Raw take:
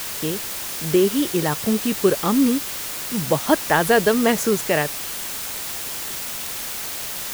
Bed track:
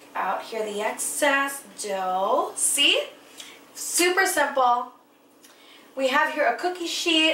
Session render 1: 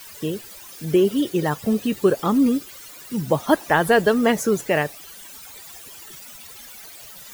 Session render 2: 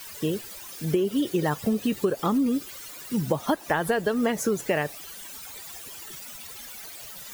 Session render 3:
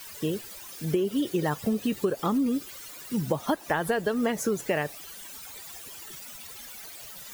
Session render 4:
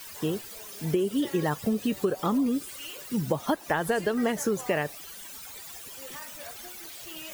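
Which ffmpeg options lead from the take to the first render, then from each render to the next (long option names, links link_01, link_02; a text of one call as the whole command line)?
ffmpeg -i in.wav -af "afftdn=noise_reduction=16:noise_floor=-30" out.wav
ffmpeg -i in.wav -af "acompressor=threshold=-20dB:ratio=12" out.wav
ffmpeg -i in.wav -af "volume=-2dB" out.wav
ffmpeg -i in.wav -i bed.wav -filter_complex "[1:a]volume=-24dB[link_01];[0:a][link_01]amix=inputs=2:normalize=0" out.wav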